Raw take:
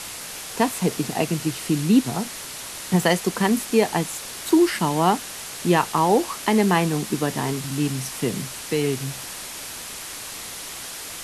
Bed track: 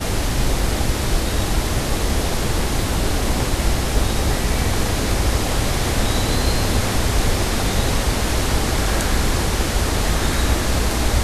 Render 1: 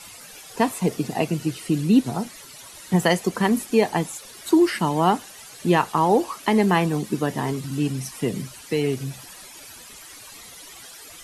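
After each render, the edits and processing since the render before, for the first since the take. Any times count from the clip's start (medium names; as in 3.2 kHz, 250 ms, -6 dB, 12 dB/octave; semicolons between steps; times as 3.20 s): noise reduction 13 dB, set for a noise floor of -35 dBFS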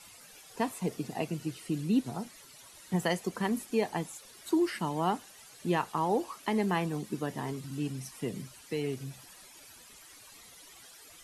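trim -10.5 dB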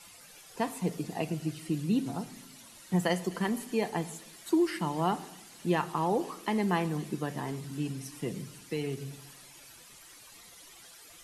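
feedback echo behind a high-pass 255 ms, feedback 67%, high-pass 2.8 kHz, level -14.5 dB; simulated room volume 2800 m³, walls furnished, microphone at 0.82 m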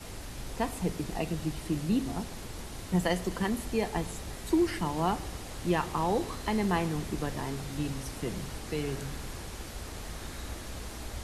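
add bed track -21.5 dB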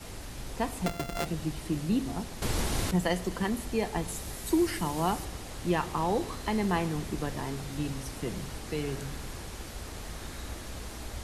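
0.86–1.26 s: sorted samples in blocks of 64 samples; 2.42–2.91 s: gain +11.5 dB; 4.08–5.25 s: treble shelf 7.8 kHz +10.5 dB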